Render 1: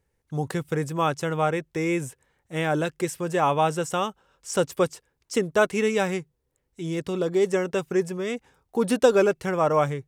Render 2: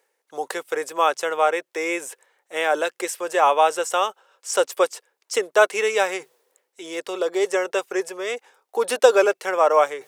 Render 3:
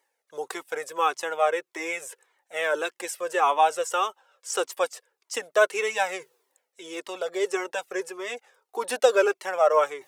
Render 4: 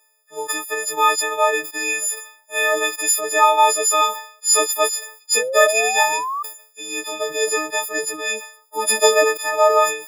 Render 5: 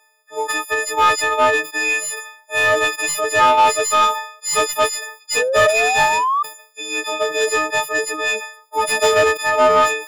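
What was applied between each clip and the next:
high-pass filter 450 Hz 24 dB per octave; reversed playback; upward compression, threshold −41 dBFS; reversed playback; level +5.5 dB
flanger whose copies keep moving one way falling 1.7 Hz
every partial snapped to a pitch grid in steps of 6 semitones; sound drawn into the spectrogram rise, 0:05.35–0:06.43, 460–1,200 Hz −28 dBFS; level that may fall only so fast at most 110 dB per second; level +3.5 dB
mid-hump overdrive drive 19 dB, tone 2,200 Hz, clips at −1 dBFS; level −3.5 dB

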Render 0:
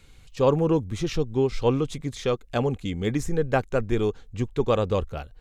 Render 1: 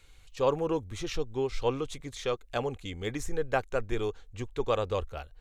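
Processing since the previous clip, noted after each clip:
parametric band 180 Hz −11.5 dB 1.7 octaves
notch filter 5,000 Hz, Q 22
level −3 dB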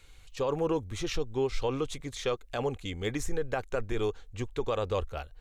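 brickwall limiter −22 dBFS, peak gain reduction 9 dB
level +2 dB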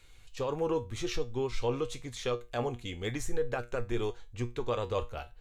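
tuned comb filter 120 Hz, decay 0.25 s, harmonics all, mix 70%
level +4.5 dB

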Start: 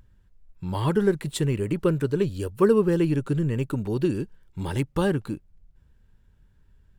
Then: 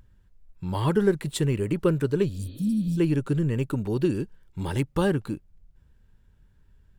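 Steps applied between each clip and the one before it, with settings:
healed spectral selection 0:02.36–0:02.96, 240–4,600 Hz before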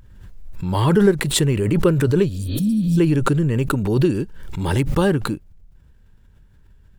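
background raised ahead of every attack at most 38 dB per second
level +5.5 dB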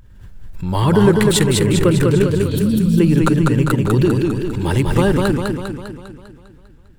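feedback echo with a swinging delay time 200 ms, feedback 56%, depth 84 cents, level −3 dB
level +1.5 dB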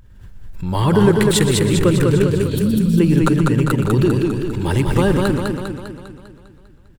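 single-tap delay 122 ms −13 dB
level −1 dB

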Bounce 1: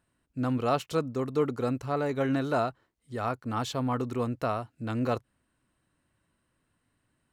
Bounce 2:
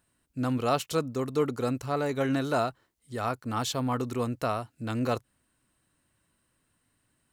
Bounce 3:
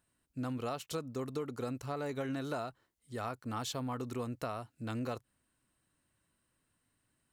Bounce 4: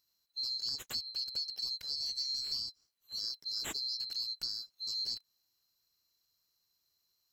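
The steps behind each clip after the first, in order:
high-shelf EQ 4,200 Hz +9.5 dB
downward compressor 10 to 1, threshold −28 dBFS, peak gain reduction 8.5 dB; level −5.5 dB
neighbouring bands swapped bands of 4,000 Hz

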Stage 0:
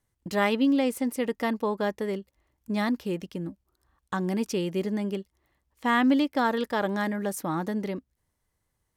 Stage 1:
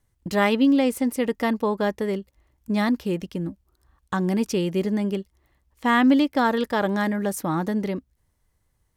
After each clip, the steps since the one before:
low-shelf EQ 100 Hz +8.5 dB
level +3.5 dB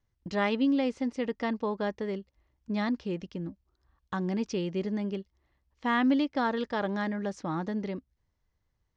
Butterworth low-pass 6,200 Hz 36 dB per octave
level −7.5 dB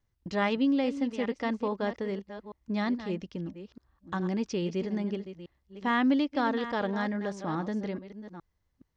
delay that plays each chunk backwards 420 ms, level −11.5 dB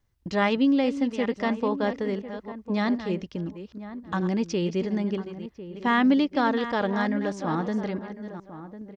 slap from a distant wall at 180 metres, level −13 dB
level +4.5 dB

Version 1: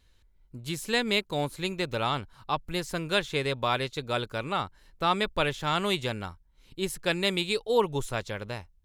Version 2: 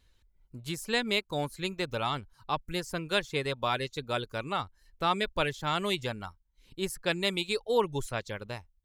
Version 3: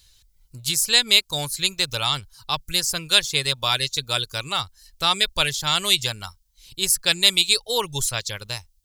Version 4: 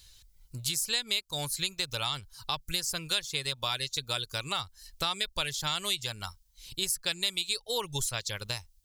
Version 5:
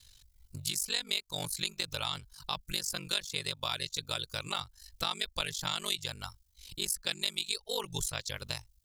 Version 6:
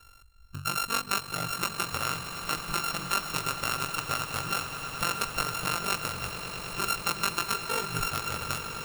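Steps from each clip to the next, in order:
reverb reduction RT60 0.55 s; level −2 dB
drawn EQ curve 140 Hz 0 dB, 220 Hz −10 dB, 2,100 Hz +1 dB, 4,800 Hz +15 dB; level +6 dB
downward compressor 3 to 1, threshold −31 dBFS, peak gain reduction 15.5 dB
ring modulation 24 Hz
samples sorted by size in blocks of 32 samples; echo that builds up and dies away 105 ms, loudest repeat 8, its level −15 dB; level +4 dB

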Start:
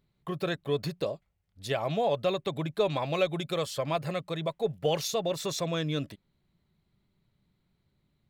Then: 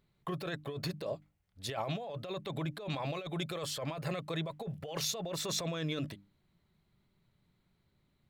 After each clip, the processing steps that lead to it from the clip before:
parametric band 1,400 Hz +2.5 dB 2.1 octaves
mains-hum notches 50/100/150/200/250/300 Hz
compressor whose output falls as the input rises −33 dBFS, ratio −1
level −4 dB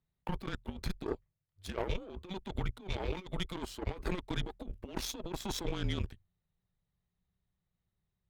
tilt shelving filter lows +3 dB, about 1,100 Hz
frequency shifter −190 Hz
harmonic generator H 7 −19 dB, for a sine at −21 dBFS
level +1 dB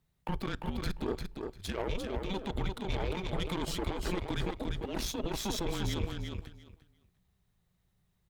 brickwall limiter −32 dBFS, peak gain reduction 10.5 dB
repeating echo 348 ms, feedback 17%, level −5 dB
on a send at −23.5 dB: convolution reverb RT60 0.55 s, pre-delay 7 ms
on the sum: level +8.5 dB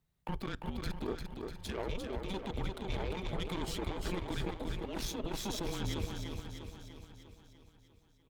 repeating echo 646 ms, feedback 35%, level −10 dB
level −3.5 dB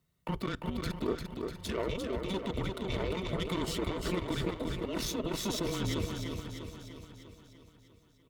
notch comb filter 810 Hz
level +5.5 dB

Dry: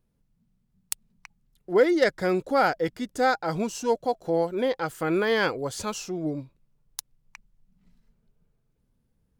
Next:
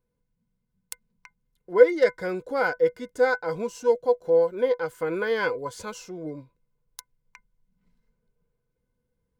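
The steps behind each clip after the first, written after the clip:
hollow resonant body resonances 490/1,000/1,500/2,100 Hz, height 16 dB, ringing for 95 ms
level −7 dB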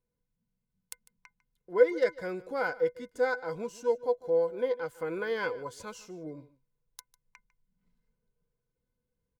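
single-tap delay 150 ms −19.5 dB
level −6.5 dB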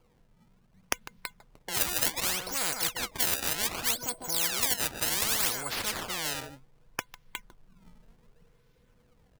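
sample-and-hold swept by an LFO 23×, swing 160% 0.66 Hz
every bin compressed towards the loudest bin 10 to 1
level +5.5 dB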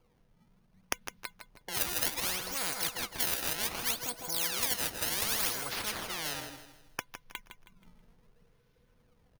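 notch filter 7,600 Hz, Q 6.7
on a send: repeating echo 160 ms, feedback 36%, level −10 dB
on the sum: level −3.5 dB

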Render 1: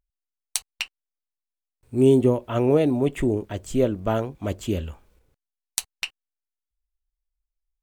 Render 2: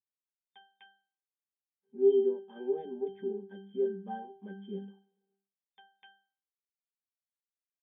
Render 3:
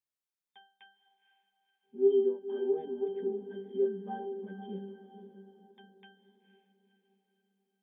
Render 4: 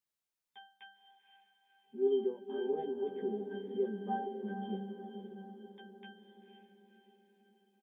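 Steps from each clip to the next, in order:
mains-hum notches 50/100/150/200 Hz; brick-wall band-pass 140–3,600 Hz; resonances in every octave G, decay 0.41 s; level +2.5 dB
feedback delay with all-pass diffusion 506 ms, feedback 45%, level −11 dB; every ending faded ahead of time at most 200 dB per second
double-tracking delay 14 ms −4 dB; feedback delay with all-pass diffusion 527 ms, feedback 49%, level −9 dB

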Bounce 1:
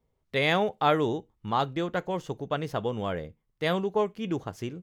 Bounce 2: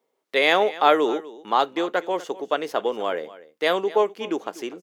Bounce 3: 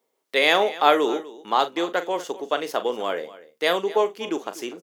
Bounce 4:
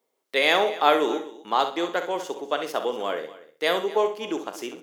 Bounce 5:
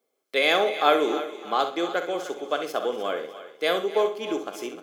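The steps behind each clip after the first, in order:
high-pass filter 310 Hz 24 dB per octave; single-tap delay 245 ms −18 dB; level +6.5 dB
high-shelf EQ 4,300 Hz +7.5 dB; double-tracking delay 41 ms −12 dB; level −1 dB
flutter between parallel walls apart 11.1 metres, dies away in 0.38 s; level −2 dB
notch comb filter 930 Hz; feedback echo with a high-pass in the loop 305 ms, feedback 39%, high-pass 450 Hz, level −13 dB

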